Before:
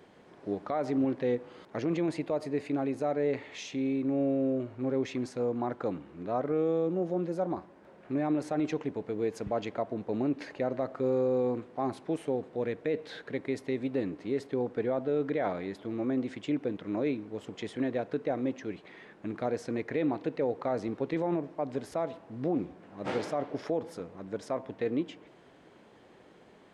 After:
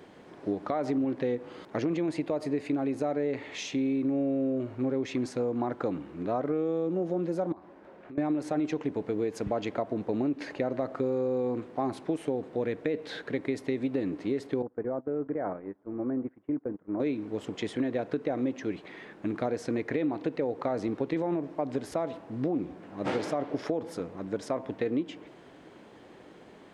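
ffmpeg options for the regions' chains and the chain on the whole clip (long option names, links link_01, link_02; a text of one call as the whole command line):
ffmpeg -i in.wav -filter_complex "[0:a]asettb=1/sr,asplit=3[link_01][link_02][link_03];[link_01]atrim=end=7.524[link_04];[link_02]atrim=start=7.52:end=8.18,asetpts=PTS-STARTPTS,afade=type=in:duration=0.004:curve=qsin,afade=type=out:start_time=0.656:duration=0.004:curve=qsin,lowpass=frequency=2900:poles=1,equalizer=frequency=120:width_type=o:width=2.1:gain=-6,acompressor=threshold=-49dB:ratio=5:attack=3.2:release=140:knee=1:detection=peak[link_05];[link_03]atrim=start=8.176[link_06];[link_04][link_05]acrossfade=duration=0.004:curve1=hsin:curve2=qsin[link_07];[link_07][link_06]acrossfade=duration=0.004:curve1=qsin:curve2=hsin,asettb=1/sr,asplit=3[link_08][link_09][link_10];[link_08]atrim=end=14.624[link_11];[link_09]atrim=start=14.62:end=17,asetpts=PTS-STARTPTS,afade=type=in:duration=0.004:curve=qsin,afade=type=out:start_time=2.376:duration=0.004:curve=qsin,lowpass=frequency=1600:width=0.5412,lowpass=frequency=1600:width=1.3066,acompressor=threshold=-37dB:ratio=2:attack=3.2:release=140:knee=1:detection=peak,agate=range=-23dB:threshold=-39dB:ratio=16:release=100:detection=peak[link_12];[link_10]atrim=start=16.996[link_13];[link_11][link_12]acrossfade=duration=0.004:curve1=hsin:curve2=qsin[link_14];[link_14][link_13]acrossfade=duration=0.004:curve1=qsin:curve2=hsin,equalizer=frequency=300:width=3.7:gain=3.5,acompressor=threshold=-30dB:ratio=6,volume=4.5dB" out.wav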